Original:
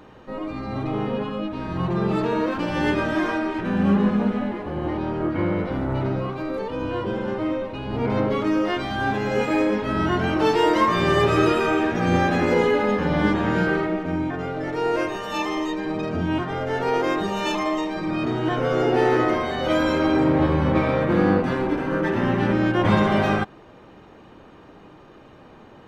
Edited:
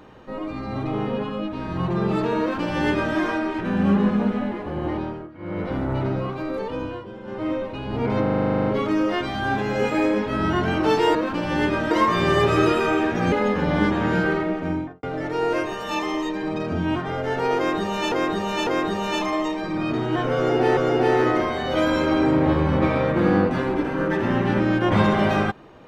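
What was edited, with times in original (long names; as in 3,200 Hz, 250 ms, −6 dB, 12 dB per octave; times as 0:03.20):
0:02.40–0:03.16: duplicate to 0:10.71
0:04.97–0:05.70: duck −18 dB, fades 0.31 s
0:06.76–0:07.51: duck −11.5 dB, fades 0.28 s
0:08.22: stutter 0.04 s, 12 plays
0:12.12–0:12.75: remove
0:14.13–0:14.46: fade out and dull
0:17.00–0:17.55: repeat, 3 plays
0:18.70–0:19.10: repeat, 2 plays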